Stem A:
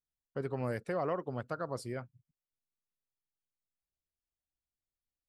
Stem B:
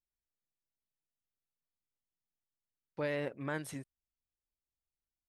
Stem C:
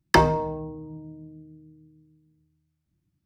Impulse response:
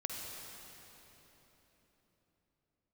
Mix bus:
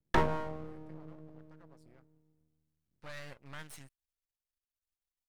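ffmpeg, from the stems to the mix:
-filter_complex "[0:a]acompressor=threshold=-52dB:ratio=2,volume=-12dB[a];[1:a]equalizer=f=330:t=o:w=2:g=-15,adelay=50,volume=1.5dB[b];[2:a]lowpass=1.7k,volume=-5.5dB[c];[a][b][c]amix=inputs=3:normalize=0,aeval=exprs='max(val(0),0)':c=same"

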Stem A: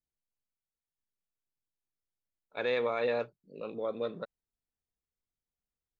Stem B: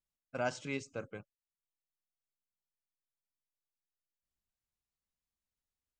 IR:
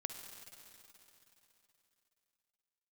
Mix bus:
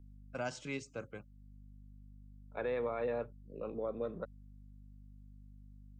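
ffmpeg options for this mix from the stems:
-filter_complex "[0:a]lowpass=1.5k,aeval=exprs='val(0)+0.00224*(sin(2*PI*50*n/s)+sin(2*PI*2*50*n/s)/2+sin(2*PI*3*50*n/s)/3+sin(2*PI*4*50*n/s)/4+sin(2*PI*5*50*n/s)/5)':c=same,volume=-0.5dB[a];[1:a]volume=-1.5dB,asplit=2[b][c];[c]apad=whole_len=264195[d];[a][d]sidechaincompress=threshold=-45dB:ratio=8:attack=16:release=614[e];[e][b]amix=inputs=2:normalize=0,acrossover=split=240|3000[f][g][h];[g]acompressor=threshold=-37dB:ratio=2[i];[f][i][h]amix=inputs=3:normalize=0"

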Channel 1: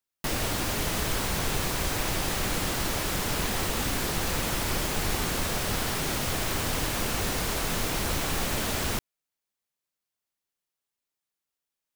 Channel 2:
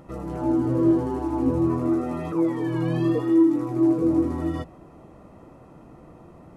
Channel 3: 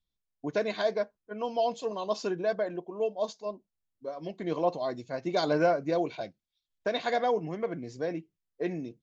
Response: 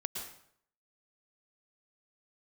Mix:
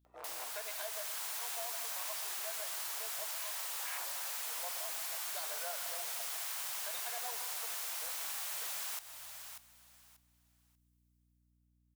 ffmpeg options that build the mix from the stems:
-filter_complex "[0:a]highshelf=f=5.6k:g=11,dynaudnorm=f=150:g=13:m=11dB,volume=-17dB,asplit=3[a][b][c];[b]volume=-13.5dB[d];[c]volume=-15.5dB[e];[1:a]aeval=exprs='val(0)+0.0178*(sin(2*PI*60*n/s)+sin(2*PI*2*60*n/s)/2+sin(2*PI*3*60*n/s)/3+sin(2*PI*4*60*n/s)/4+sin(2*PI*5*60*n/s)/5)':c=same,afwtdn=0.0251,aeval=exprs='0.0447*(abs(mod(val(0)/0.0447+3,4)-2)-1)':c=same,adelay=50,volume=-1dB[f];[2:a]volume=-9.5dB,asplit=3[g][h][i];[h]volume=-4dB[j];[i]apad=whole_len=291548[k];[f][k]sidechaincompress=threshold=-58dB:ratio=8:attack=16:release=390[l];[3:a]atrim=start_sample=2205[m];[d][j]amix=inputs=2:normalize=0[n];[n][m]afir=irnorm=-1:irlink=0[o];[e]aecho=0:1:588|1176|1764:1|0.21|0.0441[p];[a][l][g][o][p]amix=inputs=5:normalize=0,highpass=f=720:w=0.5412,highpass=f=720:w=1.3066,aeval=exprs='val(0)+0.000251*(sin(2*PI*60*n/s)+sin(2*PI*2*60*n/s)/2+sin(2*PI*3*60*n/s)/3+sin(2*PI*4*60*n/s)/4+sin(2*PI*5*60*n/s)/5)':c=same,acompressor=threshold=-40dB:ratio=3"

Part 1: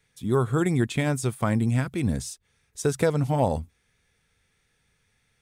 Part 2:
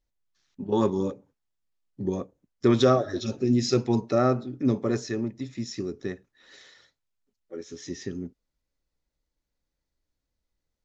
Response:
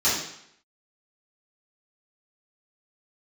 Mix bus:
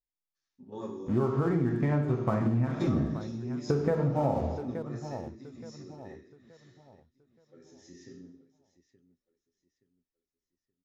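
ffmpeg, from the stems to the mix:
-filter_complex "[0:a]lowpass=1.3k,aeval=exprs='sgn(val(0))*max(abs(val(0))-0.00668,0)':c=same,adelay=850,volume=1.5dB,asplit=3[a][b][c];[b]volume=-15.5dB[d];[c]volume=-16.5dB[e];[1:a]flanger=delay=6.9:depth=8:regen=-48:speed=1.1:shape=sinusoidal,volume=-14.5dB,asplit=3[f][g][h];[g]volume=-15dB[i];[h]volume=-14.5dB[j];[2:a]atrim=start_sample=2205[k];[d][i]amix=inputs=2:normalize=0[l];[l][k]afir=irnorm=-1:irlink=0[m];[e][j]amix=inputs=2:normalize=0,aecho=0:1:874|1748|2622|3496|4370:1|0.33|0.109|0.0359|0.0119[n];[a][f][m][n]amix=inputs=4:normalize=0,acompressor=threshold=-23dB:ratio=10"

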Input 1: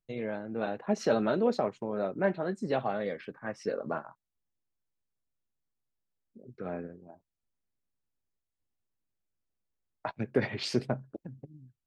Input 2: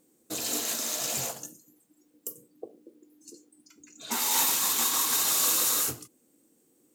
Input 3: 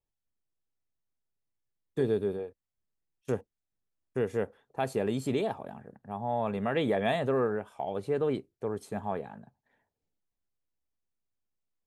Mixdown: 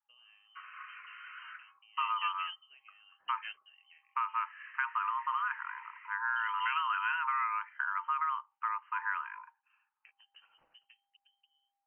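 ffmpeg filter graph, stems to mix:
-filter_complex "[0:a]acompressor=threshold=-42dB:ratio=2.5,volume=-3dB[a];[1:a]highpass=320,adelay=250,volume=-11.5dB,afade=t=out:st=1.64:d=0.38:silence=0.375837[b];[2:a]dynaudnorm=f=530:g=9:m=4.5dB,aexciter=amount=2.7:drive=8.9:freq=2.4k,volume=-6.5dB,asplit=2[c][d];[d]apad=whole_len=523169[e];[a][e]sidechaingate=range=-19dB:threshold=-58dB:ratio=16:detection=peak[f];[b][c]amix=inputs=2:normalize=0,lowpass=f=2.1k:t=q:w=0.5098,lowpass=f=2.1k:t=q:w=0.6013,lowpass=f=2.1k:t=q:w=0.9,lowpass=f=2.1k:t=q:w=2.563,afreqshift=-2500,acompressor=threshold=-32dB:ratio=6,volume=0dB[g];[f][g]amix=inputs=2:normalize=0,highpass=f=180:w=0.5412,highpass=f=180:w=1.3066,equalizer=f=1.2k:w=0.52:g=4,lowpass=f=2.8k:t=q:w=0.5098,lowpass=f=2.8k:t=q:w=0.6013,lowpass=f=2.8k:t=q:w=0.9,lowpass=f=2.8k:t=q:w=2.563,afreqshift=-3300"

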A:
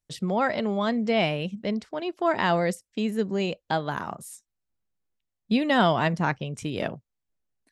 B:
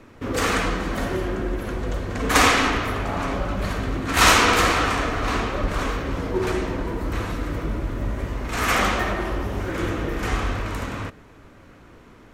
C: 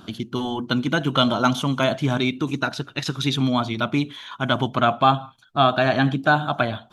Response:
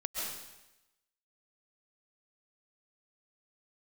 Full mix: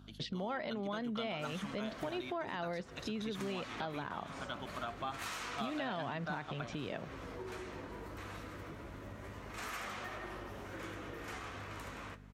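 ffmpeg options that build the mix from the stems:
-filter_complex "[0:a]lowpass=f=4.8k:w=0.5412,lowpass=f=4.8k:w=1.3066,lowshelf=f=350:g=6,adelay=100,volume=2dB[a];[1:a]flanger=delay=7.9:depth=5.9:regen=-46:speed=0.22:shape=triangular,acompressor=threshold=-28dB:ratio=6,adelay=1050,volume=-8.5dB[b];[2:a]volume=-17.5dB,asplit=2[c][d];[d]apad=whole_len=344833[e];[a][e]sidechaincompress=threshold=-36dB:ratio=8:attack=38:release=240[f];[f][b]amix=inputs=2:normalize=0,aeval=exprs='val(0)+0.00631*(sin(2*PI*50*n/s)+sin(2*PI*2*50*n/s)/2+sin(2*PI*3*50*n/s)/3+sin(2*PI*4*50*n/s)/4+sin(2*PI*5*50*n/s)/5)':c=same,alimiter=limit=-22dB:level=0:latency=1:release=176,volume=0dB[g];[c][g]amix=inputs=2:normalize=0,highpass=57,lowshelf=f=360:g=-8.5,acompressor=threshold=-40dB:ratio=2"

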